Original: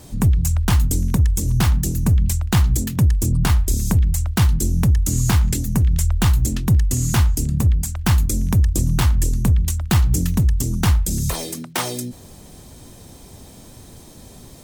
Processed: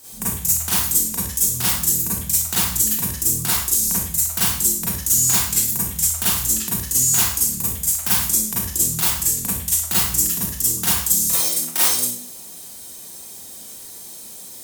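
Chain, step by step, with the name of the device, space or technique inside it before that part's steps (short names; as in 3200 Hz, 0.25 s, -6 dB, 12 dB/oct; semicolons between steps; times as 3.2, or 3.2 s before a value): turntable without a phono preamp (RIAA curve recording; white noise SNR 37 dB); Schroeder reverb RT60 0.54 s, combs from 33 ms, DRR -8.5 dB; gain -10.5 dB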